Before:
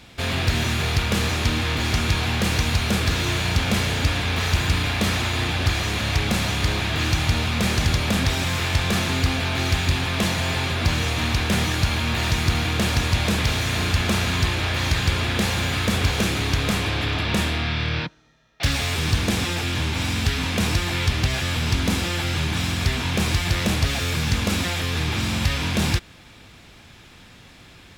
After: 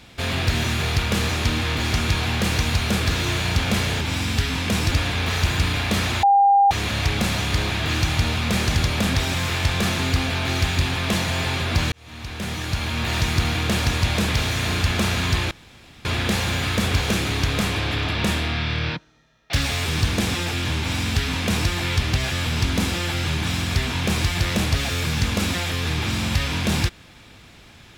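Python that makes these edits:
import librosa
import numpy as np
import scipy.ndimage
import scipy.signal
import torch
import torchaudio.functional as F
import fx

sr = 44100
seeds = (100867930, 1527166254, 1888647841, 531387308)

y = fx.edit(x, sr, fx.bleep(start_s=5.33, length_s=0.48, hz=800.0, db=-11.5),
    fx.fade_in_span(start_s=11.02, length_s=1.27),
    fx.room_tone_fill(start_s=14.61, length_s=0.54),
    fx.duplicate(start_s=19.89, length_s=0.9, to_s=4.01), tone=tone)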